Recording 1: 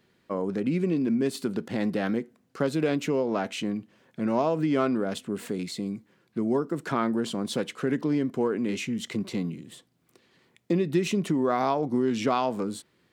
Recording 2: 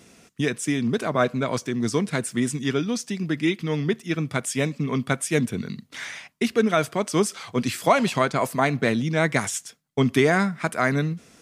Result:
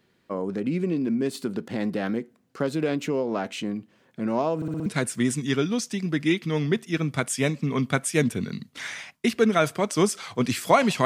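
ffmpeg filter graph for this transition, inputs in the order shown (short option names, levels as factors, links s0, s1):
-filter_complex "[0:a]apad=whole_dur=11.05,atrim=end=11.05,asplit=5[s0][s1][s2][s3][s4];[s0]atrim=end=4.622[s5];[s1]atrim=start=4.558:end=4.622[s6];[s2]atrim=start=4.558:end=4.622[s7];[s3]atrim=start=4.558:end=4.622[s8];[s4]atrim=start=4.558:end=4.622[s9];[1:a]atrim=start=2.028:end=8.22[s10];[s5][s6]acrossfade=d=0.004:c1=hsin:c2=hsin[s11];[s11][s7]acrossfade=d=0.004:c1=hsin:c2=hsin[s12];[s12][s8]acrossfade=d=0.004:c1=hsin:c2=hsin[s13];[s13][s9]acrossfade=d=0.004:c1=hsin:c2=hsin[s14];[s14][s10]acrossfade=d=0.004:c1=hsin:c2=hsin"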